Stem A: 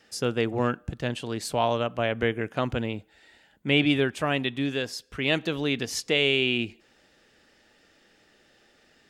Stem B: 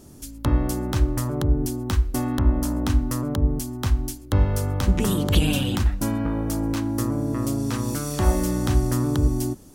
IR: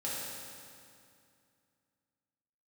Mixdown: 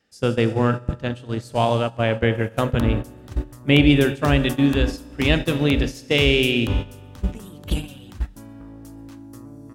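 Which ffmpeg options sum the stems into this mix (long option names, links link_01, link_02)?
-filter_complex "[0:a]lowshelf=frequency=220:gain=9,volume=2dB,asplit=2[link_01][link_02];[link_02]volume=-10.5dB[link_03];[1:a]adelay=2350,volume=-4dB,asplit=2[link_04][link_05];[link_05]volume=-20.5dB[link_06];[2:a]atrim=start_sample=2205[link_07];[link_03][link_06]amix=inputs=2:normalize=0[link_08];[link_08][link_07]afir=irnorm=-1:irlink=0[link_09];[link_01][link_04][link_09]amix=inputs=3:normalize=0,agate=range=-14dB:threshold=-21dB:ratio=16:detection=peak"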